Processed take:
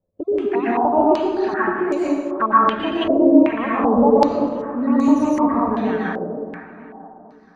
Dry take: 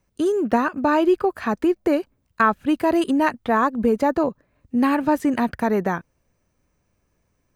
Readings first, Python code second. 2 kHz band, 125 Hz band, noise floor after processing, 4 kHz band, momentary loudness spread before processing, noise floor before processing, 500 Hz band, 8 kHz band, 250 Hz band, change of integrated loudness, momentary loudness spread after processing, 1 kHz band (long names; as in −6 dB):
−1.0 dB, +1.0 dB, −47 dBFS, +3.5 dB, 5 LU, −70 dBFS, +3.5 dB, can't be measured, +3.5 dB, +3.0 dB, 10 LU, +3.5 dB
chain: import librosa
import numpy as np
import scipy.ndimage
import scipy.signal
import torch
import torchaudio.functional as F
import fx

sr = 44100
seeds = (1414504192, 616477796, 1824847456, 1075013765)

p1 = fx.spec_dropout(x, sr, seeds[0], share_pct=25)
p2 = fx.env_flanger(p1, sr, rest_ms=11.7, full_db=-18.0)
p3 = p2 + fx.echo_feedback(p2, sr, ms=474, feedback_pct=46, wet_db=-14, dry=0)
p4 = fx.rev_plate(p3, sr, seeds[1], rt60_s=1.5, hf_ratio=0.5, predelay_ms=105, drr_db=-7.0)
p5 = fx.filter_held_lowpass(p4, sr, hz=2.6, low_hz=550.0, high_hz=6800.0)
y = p5 * librosa.db_to_amplitude(-4.5)